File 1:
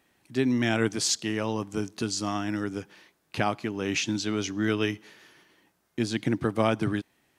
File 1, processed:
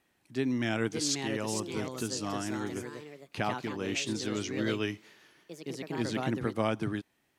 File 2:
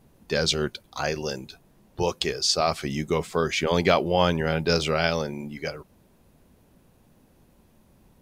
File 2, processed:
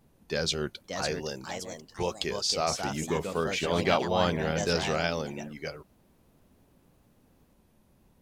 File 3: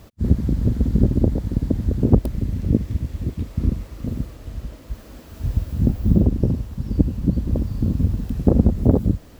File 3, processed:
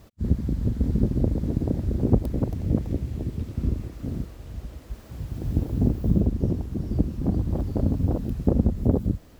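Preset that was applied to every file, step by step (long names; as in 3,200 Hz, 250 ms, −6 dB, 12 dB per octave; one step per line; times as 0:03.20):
delay with pitch and tempo change per echo 633 ms, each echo +3 semitones, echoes 2, each echo −6 dB
tape wow and flutter 29 cents
level −5.5 dB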